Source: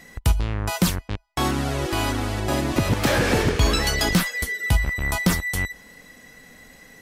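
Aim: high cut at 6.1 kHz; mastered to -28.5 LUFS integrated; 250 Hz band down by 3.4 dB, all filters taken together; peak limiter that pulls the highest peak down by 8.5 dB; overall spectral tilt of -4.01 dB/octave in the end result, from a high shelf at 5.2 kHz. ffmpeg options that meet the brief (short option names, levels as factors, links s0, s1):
-af "lowpass=6100,equalizer=f=250:t=o:g=-5,highshelf=f=5200:g=6,volume=0.841,alimiter=limit=0.112:level=0:latency=1"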